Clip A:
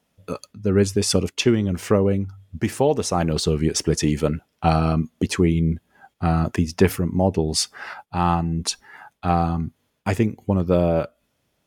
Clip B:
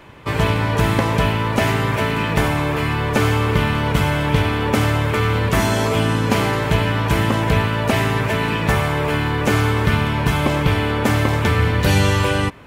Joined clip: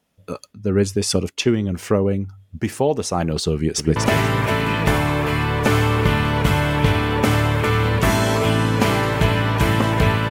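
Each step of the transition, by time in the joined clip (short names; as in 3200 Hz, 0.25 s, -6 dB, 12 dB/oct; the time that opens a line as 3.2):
clip A
3.54–3.96 echo throw 0.24 s, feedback 20%, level -5.5 dB
3.96 switch to clip B from 1.46 s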